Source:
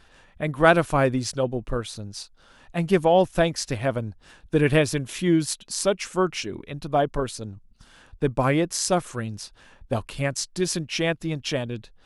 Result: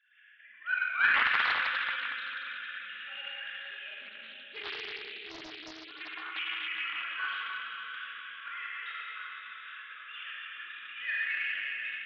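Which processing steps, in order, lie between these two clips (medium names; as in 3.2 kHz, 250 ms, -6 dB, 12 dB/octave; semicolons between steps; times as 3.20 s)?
formants replaced by sine waves; elliptic high-pass 1.5 kHz, stop band 40 dB, from 3.45 s 2.9 kHz, from 5.87 s 1.3 kHz; slow attack 698 ms; level rider gain up to 16.5 dB; reverberation RT60 4.6 s, pre-delay 13 ms, DRR -9 dB; loudspeaker Doppler distortion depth 0.56 ms; trim -7.5 dB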